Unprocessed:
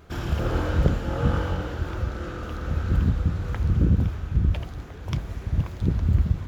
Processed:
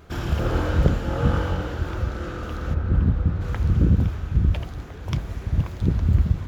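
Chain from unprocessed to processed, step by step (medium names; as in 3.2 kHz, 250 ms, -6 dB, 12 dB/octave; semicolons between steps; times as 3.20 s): 2.73–3.40 s: low-pass 1.1 kHz -> 1.9 kHz 6 dB/octave; trim +2 dB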